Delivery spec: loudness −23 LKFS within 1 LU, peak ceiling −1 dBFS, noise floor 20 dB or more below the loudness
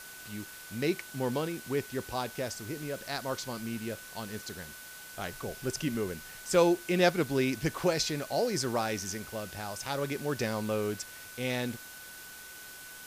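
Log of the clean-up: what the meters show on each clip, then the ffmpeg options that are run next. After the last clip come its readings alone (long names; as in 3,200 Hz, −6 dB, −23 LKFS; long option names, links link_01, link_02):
interfering tone 1,500 Hz; level of the tone −49 dBFS; background noise floor −47 dBFS; target noise floor −53 dBFS; integrated loudness −32.5 LKFS; sample peak −11.0 dBFS; target loudness −23.0 LKFS
→ -af "bandreject=frequency=1500:width=30"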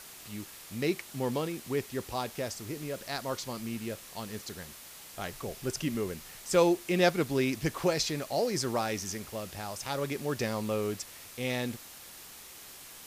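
interfering tone none found; background noise floor −49 dBFS; target noise floor −53 dBFS
→ -af "afftdn=noise_reduction=6:noise_floor=-49"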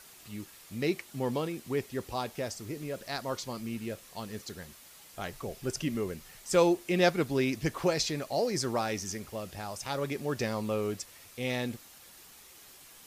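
background noise floor −54 dBFS; integrated loudness −32.5 LKFS; sample peak −11.5 dBFS; target loudness −23.0 LKFS
→ -af "volume=9.5dB"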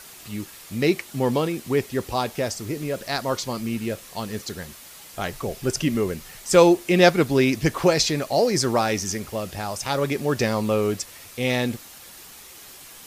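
integrated loudness −23.0 LKFS; sample peak −2.0 dBFS; background noise floor −44 dBFS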